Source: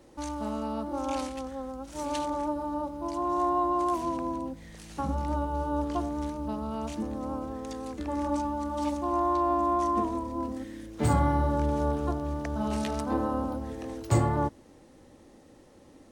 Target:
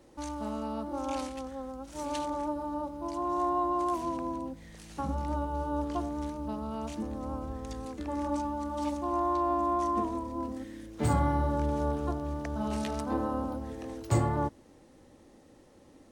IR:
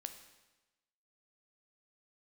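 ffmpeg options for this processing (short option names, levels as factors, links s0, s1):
-filter_complex "[0:a]asettb=1/sr,asplit=3[s0][s1][s2];[s0]atrim=end=6.984[s3];[s1]atrim=start=6.98:end=7.85,asetpts=PTS-STARTPTS,afade=t=in:d=0.004:c=qsin,afade=t=out:st=0.866:d=0.004:c=qsin,asubboost=boost=11.5:cutoff=150[s4];[s2]atrim=start=7.846[s5];[s3][s4]acrossfade=d=0.004:c1=hsin:c2=qsin[s6];[s6][s5]acrossfade=d=0.004:c1=qsin:c2=hsin,volume=0.75"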